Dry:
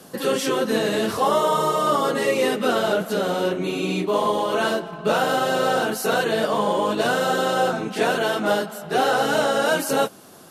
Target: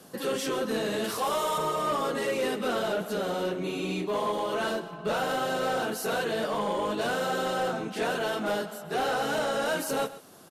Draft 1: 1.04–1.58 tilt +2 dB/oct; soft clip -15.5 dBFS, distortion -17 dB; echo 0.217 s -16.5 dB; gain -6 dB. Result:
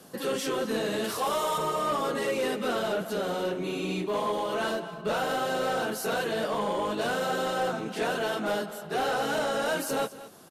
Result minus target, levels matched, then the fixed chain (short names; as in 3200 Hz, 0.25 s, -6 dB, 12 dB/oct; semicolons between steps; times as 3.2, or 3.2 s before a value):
echo 86 ms late
1.04–1.58 tilt +2 dB/oct; soft clip -15.5 dBFS, distortion -17 dB; echo 0.131 s -16.5 dB; gain -6 dB